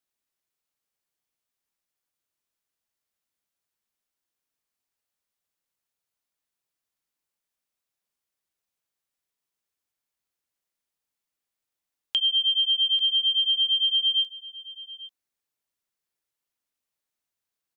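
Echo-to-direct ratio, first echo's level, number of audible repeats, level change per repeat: -18.0 dB, -18.0 dB, 1, no regular repeats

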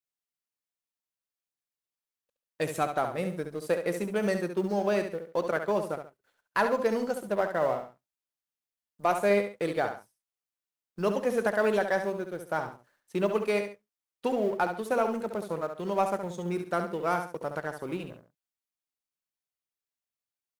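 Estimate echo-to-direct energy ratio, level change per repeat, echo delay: -7.5 dB, -10.0 dB, 69 ms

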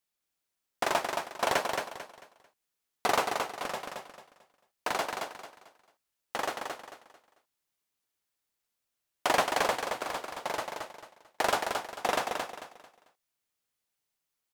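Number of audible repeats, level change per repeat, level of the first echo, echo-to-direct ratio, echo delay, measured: 3, -10.0 dB, -5.0 dB, -4.5 dB, 222 ms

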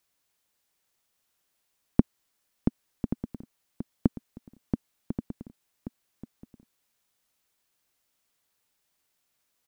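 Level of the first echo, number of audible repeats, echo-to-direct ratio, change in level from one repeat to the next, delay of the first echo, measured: -11.0 dB, 1, -11.0 dB, no regular repeats, 1131 ms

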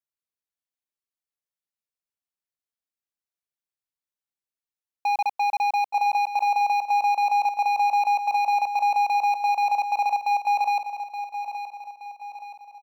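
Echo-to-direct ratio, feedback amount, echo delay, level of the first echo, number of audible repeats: -9.0 dB, 46%, 873 ms, -10.0 dB, 4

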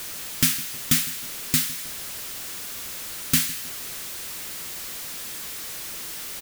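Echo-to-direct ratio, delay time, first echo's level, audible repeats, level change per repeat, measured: -17.5 dB, 158 ms, -18.5 dB, 2, -6.0 dB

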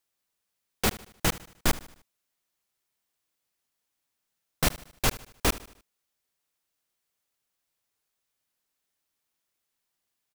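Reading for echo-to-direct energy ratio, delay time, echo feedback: -17.0 dB, 76 ms, 46%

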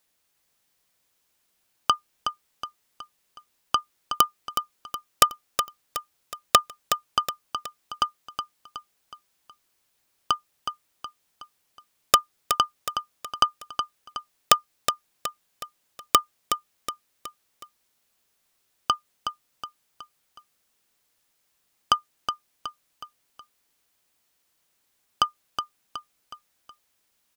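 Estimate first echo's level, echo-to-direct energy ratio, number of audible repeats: -7.5 dB, -6.5 dB, 4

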